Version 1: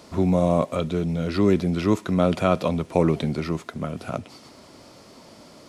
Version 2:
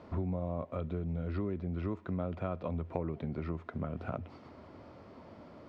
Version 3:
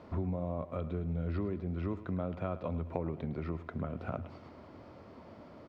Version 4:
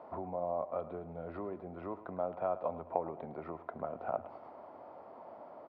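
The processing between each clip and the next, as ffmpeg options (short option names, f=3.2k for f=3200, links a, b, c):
-af "lowpass=1.8k,equalizer=f=85:w=3.9:g=11,acompressor=threshold=-29dB:ratio=5,volume=-4dB"
-af "aecho=1:1:107|214|321|428:0.178|0.0836|0.0393|0.0185"
-af "bandpass=f=770:t=q:w=2.7:csg=0,volume=9dB"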